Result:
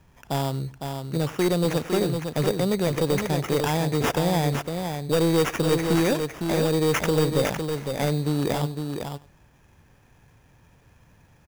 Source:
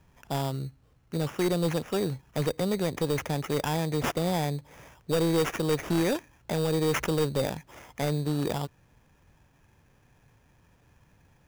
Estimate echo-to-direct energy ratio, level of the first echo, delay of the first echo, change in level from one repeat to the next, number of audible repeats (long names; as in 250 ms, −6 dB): −6.0 dB, −20.5 dB, 98 ms, repeats not evenly spaced, 3